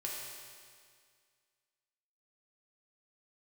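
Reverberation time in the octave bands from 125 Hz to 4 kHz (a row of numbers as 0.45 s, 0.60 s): 2.0 s, 2.0 s, 2.0 s, 2.0 s, 2.0 s, 2.0 s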